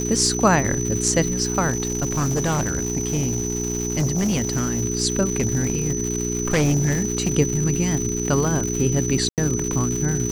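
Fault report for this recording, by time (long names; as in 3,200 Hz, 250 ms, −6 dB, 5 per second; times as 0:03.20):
surface crackle 270 per second −25 dBFS
mains hum 60 Hz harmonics 7 −26 dBFS
whistle 6,000 Hz −27 dBFS
0:01.69–0:04.84: clipping −17.5 dBFS
0:05.35–0:07.32: clipping −15 dBFS
0:09.29–0:09.38: drop-out 88 ms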